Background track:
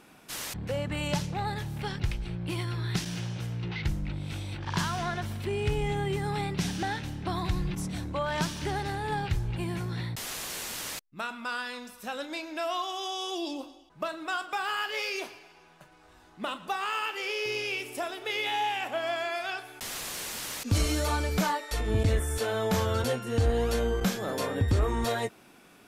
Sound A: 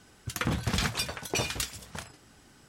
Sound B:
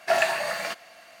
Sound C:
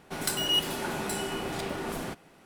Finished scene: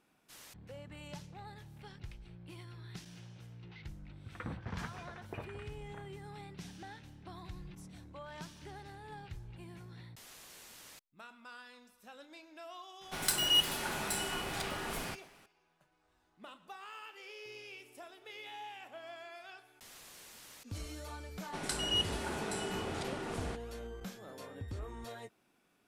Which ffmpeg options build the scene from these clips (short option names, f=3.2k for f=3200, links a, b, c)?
-filter_complex "[3:a]asplit=2[a][b];[0:a]volume=-17.5dB[c];[1:a]lowpass=f=2.1k:w=0.5412,lowpass=f=2.1k:w=1.3066[d];[a]equalizer=f=310:w=0.45:g=-9[e];[b]lowpass=f=10k:w=0.5412,lowpass=f=10k:w=1.3066[f];[d]atrim=end=2.68,asetpts=PTS-STARTPTS,volume=-12.5dB,afade=t=in:d=0.004:c=hsin,afade=t=out:st=2.676:d=0.004:c=hsin,adelay=3990[g];[e]atrim=end=2.45,asetpts=PTS-STARTPTS,volume=-0.5dB,afade=t=in:d=0.004:c=hsin,afade=t=out:st=2.446:d=0.004:c=hsin,adelay=13010[h];[f]atrim=end=2.45,asetpts=PTS-STARTPTS,volume=-6dB,afade=t=in:d=0.004:c=hsin,afade=t=out:st=2.446:d=0.004:c=hsin,adelay=21420[i];[c][g][h][i]amix=inputs=4:normalize=0"